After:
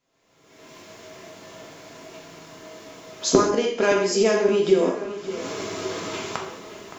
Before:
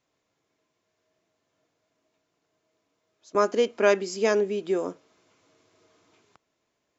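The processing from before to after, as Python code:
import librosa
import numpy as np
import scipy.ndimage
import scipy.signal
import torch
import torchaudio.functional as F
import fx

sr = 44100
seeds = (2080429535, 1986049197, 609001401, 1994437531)

p1 = fx.recorder_agc(x, sr, target_db=-14.5, rise_db_per_s=43.0, max_gain_db=30)
p2 = p1 + fx.echo_filtered(p1, sr, ms=568, feedback_pct=58, hz=4300.0, wet_db=-13.5, dry=0)
p3 = fx.rev_gated(p2, sr, seeds[0], gate_ms=240, shape='falling', drr_db=-0.5)
y = F.gain(torch.from_numpy(p3), -1.0).numpy()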